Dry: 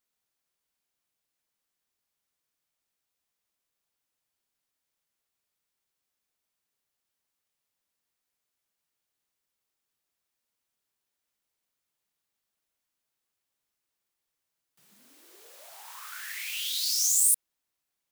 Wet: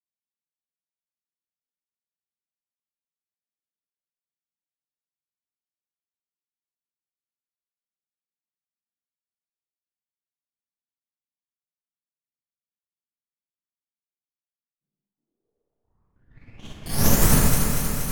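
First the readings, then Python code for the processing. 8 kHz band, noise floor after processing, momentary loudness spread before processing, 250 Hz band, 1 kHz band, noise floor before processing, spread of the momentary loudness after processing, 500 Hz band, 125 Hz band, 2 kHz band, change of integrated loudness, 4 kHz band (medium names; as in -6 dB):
-1.5 dB, under -85 dBFS, 19 LU, +42.5 dB, +18.0 dB, -85 dBFS, 12 LU, +29.0 dB, no reading, +7.0 dB, +3.5 dB, -2.0 dB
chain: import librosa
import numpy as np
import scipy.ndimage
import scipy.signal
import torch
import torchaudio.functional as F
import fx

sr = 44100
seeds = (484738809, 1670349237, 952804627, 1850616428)

p1 = fx.spec_dropout(x, sr, seeds[0], share_pct=56)
p2 = scipy.signal.sosfilt(scipy.signal.butter(2, 180.0, 'highpass', fs=sr, output='sos'), p1)
p3 = fx.cheby_harmonics(p2, sr, harmonics=(2, 3, 6, 7), levels_db=(-7, -20, -12, -27), full_scale_db=-12.5)
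p4 = fx.bass_treble(p3, sr, bass_db=14, treble_db=-7)
p5 = fx.env_lowpass(p4, sr, base_hz=350.0, full_db=-30.0)
p6 = fx.high_shelf(p5, sr, hz=9800.0, db=11.5)
p7 = p6 + fx.echo_alternate(p6, sr, ms=119, hz=2200.0, feedback_pct=89, wet_db=-2.5, dry=0)
p8 = fx.rev_schroeder(p7, sr, rt60_s=0.75, comb_ms=27, drr_db=-4.5)
y = fx.upward_expand(p8, sr, threshold_db=-43.0, expansion=1.5)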